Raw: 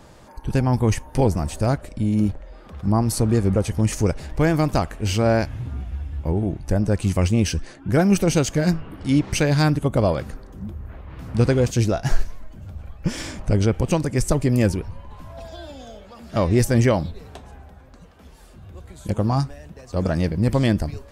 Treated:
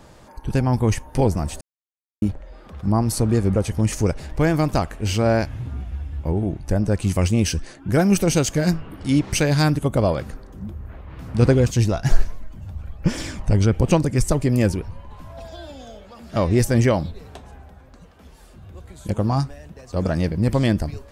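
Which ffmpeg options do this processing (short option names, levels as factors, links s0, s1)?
-filter_complex "[0:a]asettb=1/sr,asplit=3[s0][s1][s2];[s0]atrim=end=7.094[s3];[s1]atrim=start=7.09:end=9.96,asetpts=PTS-STARTPTS,afade=t=in:d=0.004:c=qsin,afade=t=out:st=2.866:d=0.004:c=qsin,highshelf=f=5800:g=5[s4];[s2]atrim=start=9.956[s5];[s3][s4]acrossfade=d=0.004:c1=hsin:c2=qsin[s6];[s6][s5]acrossfade=d=0.004:c1=qsin:c2=hsin,asettb=1/sr,asplit=3[s7][s8][s9];[s7]atrim=end=11.424[s10];[s8]atrim=start=11.42:end=14.29,asetpts=PTS-STARTPTS,afade=t=in:d=0.004:c=qsin,afade=t=out:st=2.866:d=0.004:c=qsin,aphaser=in_gain=1:out_gain=1:delay=1.1:decay=0.34:speed=1.2:type=sinusoidal[s11];[s9]atrim=start=14.286[s12];[s10][s11]acrossfade=d=0.004:c1=hsin:c2=qsin[s13];[s13][s12]acrossfade=d=0.004:c1=qsin:c2=hsin,asplit=3[s14][s15][s16];[s14]atrim=end=1.61,asetpts=PTS-STARTPTS,afade=t=out:st=1.606:d=0.004:c=hsin[s17];[s15]atrim=start=1.61:end=2.22,asetpts=PTS-STARTPTS,volume=0[s18];[s16]atrim=start=2.22,asetpts=PTS-STARTPTS,afade=t=in:d=0.004:c=hsin[s19];[s17][s18][s19]concat=n=3:v=0:a=1"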